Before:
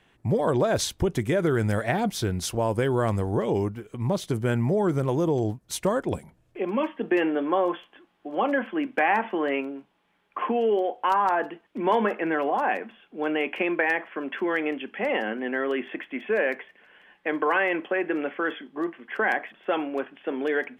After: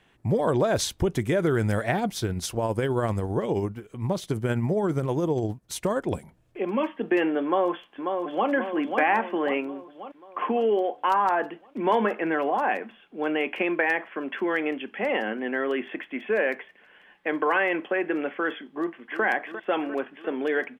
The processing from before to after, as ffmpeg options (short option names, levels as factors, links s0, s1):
-filter_complex "[0:a]asettb=1/sr,asplit=3[s0][s1][s2];[s0]atrim=end=1.984[s3];[s1]atrim=start=1.98:end=6.03,asetpts=PTS-STARTPTS,afade=t=in:d=0.004:c=qsin,afade=t=out:st=4.046:d=0.004:c=qsin,tremolo=f=15:d=0.35[s4];[s2]atrim=start=6.026[s5];[s3][s4]acrossfade=d=0.004:c1=hsin:c2=qsin[s6];[s6][s5]acrossfade=d=0.004:c1=qsin:c2=hsin,asplit=2[s7][s8];[s8]afade=t=in:st=7.44:d=0.01,afade=t=out:st=8.49:d=0.01,aecho=0:1:540|1080|1620|2160|2700|3240|3780:0.562341|0.309288|0.170108|0.0935595|0.0514577|0.0283018|0.015566[s9];[s7][s9]amix=inputs=2:normalize=0,asplit=2[s10][s11];[s11]afade=t=in:st=18.76:d=0.01,afade=t=out:st=19.24:d=0.01,aecho=0:1:350|700|1050|1400|1750|2100|2450|2800|3150|3500:0.266073|0.186251|0.130376|0.0912629|0.063884|0.0447188|0.0313032|0.0219122|0.0153386|0.010737[s12];[s10][s12]amix=inputs=2:normalize=0"